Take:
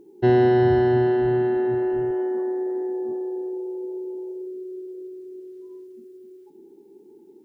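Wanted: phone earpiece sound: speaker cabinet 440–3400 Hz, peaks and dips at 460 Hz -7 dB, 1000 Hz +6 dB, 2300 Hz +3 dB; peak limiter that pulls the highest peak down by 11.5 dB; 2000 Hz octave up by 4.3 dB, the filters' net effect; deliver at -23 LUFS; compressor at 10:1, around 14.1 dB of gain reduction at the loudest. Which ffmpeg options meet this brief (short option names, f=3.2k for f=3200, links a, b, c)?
-af "equalizer=f=2k:t=o:g=4.5,acompressor=threshold=-28dB:ratio=10,alimiter=level_in=5dB:limit=-24dB:level=0:latency=1,volume=-5dB,highpass=440,equalizer=f=460:t=q:w=4:g=-7,equalizer=f=1k:t=q:w=4:g=6,equalizer=f=2.3k:t=q:w=4:g=3,lowpass=f=3.4k:w=0.5412,lowpass=f=3.4k:w=1.3066,volume=18.5dB"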